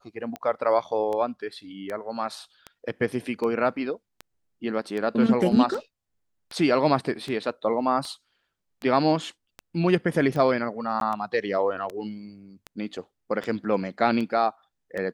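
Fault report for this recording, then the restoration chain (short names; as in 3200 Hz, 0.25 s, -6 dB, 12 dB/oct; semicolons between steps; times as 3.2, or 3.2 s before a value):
tick 78 rpm -20 dBFS
11–11.01 gap 12 ms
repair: de-click; interpolate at 11, 12 ms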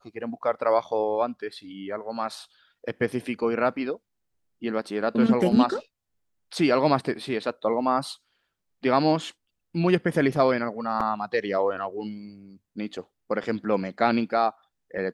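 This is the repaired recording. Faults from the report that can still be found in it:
none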